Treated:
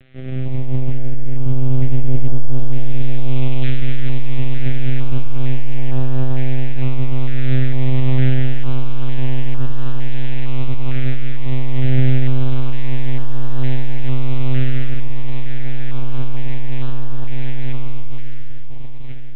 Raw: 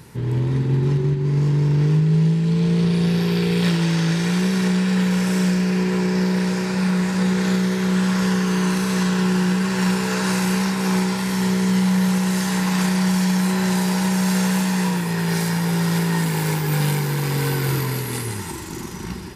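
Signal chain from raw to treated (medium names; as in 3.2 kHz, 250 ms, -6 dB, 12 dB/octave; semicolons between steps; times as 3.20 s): high-pass 65 Hz 12 dB/octave; peaking EQ 2.2 kHz +7 dB 0.68 oct; full-wave rectifier; reverberation RT60 2.4 s, pre-delay 15 ms, DRR 5.5 dB; monotone LPC vocoder at 8 kHz 130 Hz; step-sequenced notch 2.2 Hz 970–2100 Hz; trim -4.5 dB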